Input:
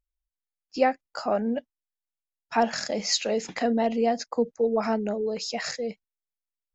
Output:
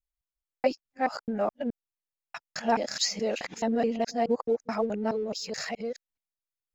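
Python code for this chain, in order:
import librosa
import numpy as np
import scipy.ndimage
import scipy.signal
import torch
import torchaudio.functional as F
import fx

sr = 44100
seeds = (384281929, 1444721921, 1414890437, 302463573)

p1 = fx.local_reverse(x, sr, ms=213.0)
p2 = np.sign(p1) * np.maximum(np.abs(p1) - 10.0 ** (-39.0 / 20.0), 0.0)
p3 = p1 + (p2 * 10.0 ** (-11.5 / 20.0))
y = p3 * 10.0 ** (-4.5 / 20.0)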